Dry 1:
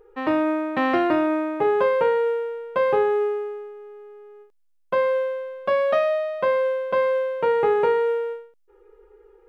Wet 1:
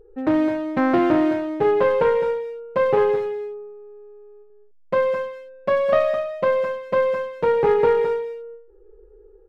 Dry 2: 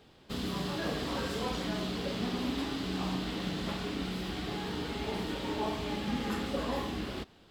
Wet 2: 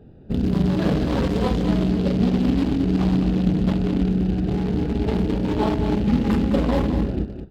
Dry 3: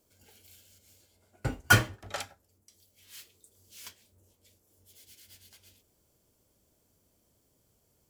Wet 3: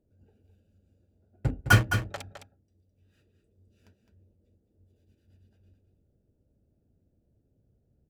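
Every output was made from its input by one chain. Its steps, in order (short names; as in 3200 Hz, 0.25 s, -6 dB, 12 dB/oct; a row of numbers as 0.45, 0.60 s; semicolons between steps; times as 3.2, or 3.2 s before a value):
Wiener smoothing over 41 samples; tone controls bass +6 dB, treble -4 dB; echo 0.211 s -8.5 dB; normalise peaks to -6 dBFS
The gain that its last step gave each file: +3.0, +12.0, 0.0 dB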